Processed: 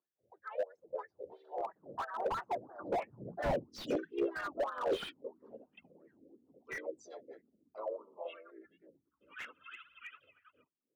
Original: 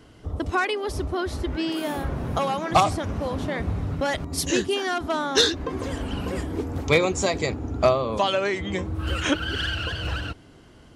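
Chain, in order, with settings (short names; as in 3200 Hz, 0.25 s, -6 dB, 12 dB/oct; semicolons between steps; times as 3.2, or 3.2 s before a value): formant sharpening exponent 3; Doppler pass-by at 3.49, 54 m/s, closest 8.6 m; HPF 180 Hz 12 dB/oct; band shelf 4100 Hz +10.5 dB; AGC gain up to 11.5 dB; flange 1.2 Hz, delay 4.5 ms, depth 6.6 ms, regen -33%; tremolo 3.1 Hz, depth 64%; harmoniser -4 st -15 dB, +3 st -5 dB, +5 st -15 dB; wah 3 Hz 520–1900 Hz, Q 8.5; slew limiter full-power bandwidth 2.9 Hz; gain +17 dB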